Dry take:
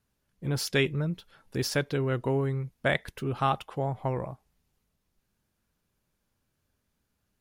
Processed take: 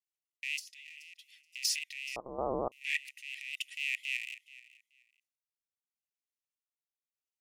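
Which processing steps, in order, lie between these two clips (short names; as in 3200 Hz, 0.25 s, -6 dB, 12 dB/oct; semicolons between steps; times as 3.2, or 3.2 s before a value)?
rattling part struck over -39 dBFS, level -16 dBFS; gate -55 dBFS, range -16 dB; transient shaper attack -7 dB, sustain +10 dB; 0.56–1.65 compressor 10:1, threshold -35 dBFS, peak gain reduction 17 dB; soft clip -13 dBFS, distortion -22 dB; chopper 0.84 Hz, depth 60%, duty 50%; rippled Chebyshev high-pass 1900 Hz, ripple 6 dB; vibrato 4 Hz 64 cents; feedback echo 0.428 s, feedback 19%, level -18.5 dB; 2.16–2.72 inverted band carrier 3100 Hz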